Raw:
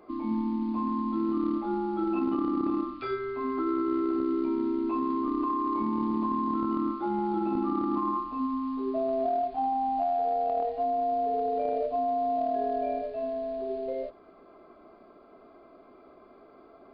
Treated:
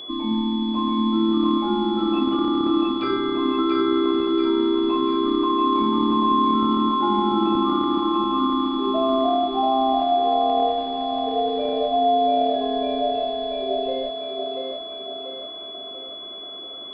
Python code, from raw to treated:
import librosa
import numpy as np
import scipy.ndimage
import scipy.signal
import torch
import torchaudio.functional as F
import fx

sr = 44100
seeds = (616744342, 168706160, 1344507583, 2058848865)

y = fx.echo_thinned(x, sr, ms=686, feedback_pct=53, hz=200.0, wet_db=-3.0)
y = y + 10.0 ** (-40.0 / 20.0) * np.sin(2.0 * np.pi * 3400.0 * np.arange(len(y)) / sr)
y = y * librosa.db_to_amplitude(6.0)